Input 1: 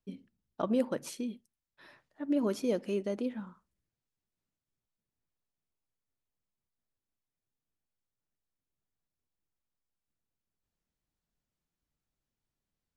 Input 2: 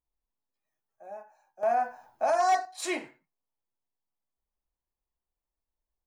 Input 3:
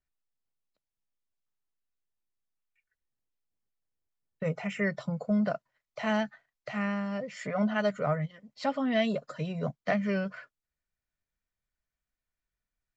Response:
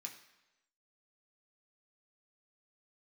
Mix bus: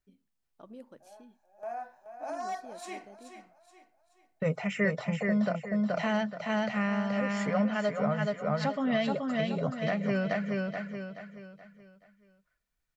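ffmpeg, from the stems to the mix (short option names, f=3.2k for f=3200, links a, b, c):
-filter_complex "[0:a]volume=-19dB[a];[1:a]volume=-12dB,asplit=2[b][c];[c]volume=-9.5dB[d];[2:a]volume=2.5dB,asplit=3[e][f][g];[f]volume=-3.5dB[h];[g]apad=whole_len=267349[i];[b][i]sidechaincompress=threshold=-34dB:ratio=8:attack=16:release=225[j];[d][h]amix=inputs=2:normalize=0,aecho=0:1:427|854|1281|1708|2135:1|0.38|0.144|0.0549|0.0209[k];[a][j][e][k]amix=inputs=4:normalize=0,alimiter=limit=-18dB:level=0:latency=1:release=421"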